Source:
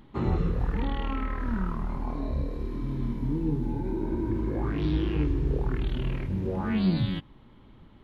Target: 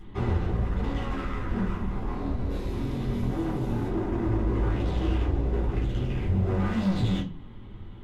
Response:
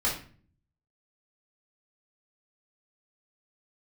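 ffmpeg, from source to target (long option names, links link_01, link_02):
-filter_complex "[0:a]asplit=3[link_01][link_02][link_03];[link_01]afade=type=out:start_time=2.49:duration=0.02[link_04];[link_02]highshelf=frequency=2300:gain=12,afade=type=in:start_time=2.49:duration=0.02,afade=type=out:start_time=3.87:duration=0.02[link_05];[link_03]afade=type=in:start_time=3.87:duration=0.02[link_06];[link_04][link_05][link_06]amix=inputs=3:normalize=0,volume=33dB,asoftclip=hard,volume=-33dB[link_07];[1:a]atrim=start_sample=2205,asetrate=70560,aresample=44100[link_08];[link_07][link_08]afir=irnorm=-1:irlink=0"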